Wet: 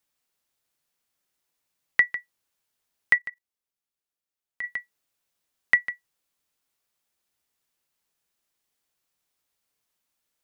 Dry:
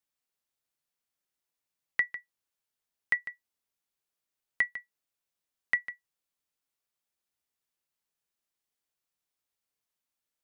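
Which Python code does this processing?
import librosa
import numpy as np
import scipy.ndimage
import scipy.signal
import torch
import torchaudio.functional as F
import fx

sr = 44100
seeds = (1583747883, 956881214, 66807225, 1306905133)

y = fx.level_steps(x, sr, step_db=20, at=(3.18, 4.64))
y = F.gain(torch.from_numpy(y), 8.0).numpy()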